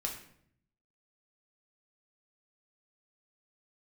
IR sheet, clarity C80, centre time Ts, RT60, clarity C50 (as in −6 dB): 10.5 dB, 23 ms, 0.65 s, 7.0 dB